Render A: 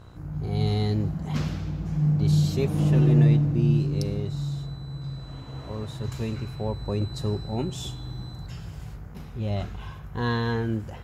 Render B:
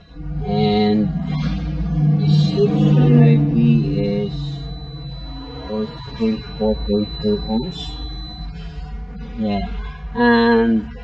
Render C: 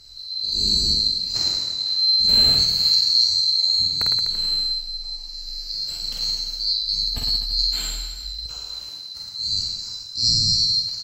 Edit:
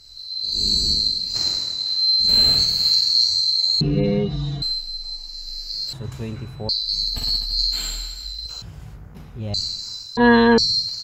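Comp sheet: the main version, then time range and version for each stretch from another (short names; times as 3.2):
C
3.81–4.62 from B
5.93–6.69 from A
8.62–9.54 from A
10.17–10.58 from B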